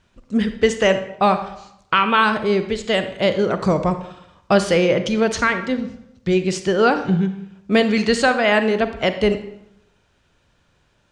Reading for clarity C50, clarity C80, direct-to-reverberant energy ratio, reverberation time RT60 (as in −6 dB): 10.0 dB, 13.0 dB, 9.0 dB, 0.80 s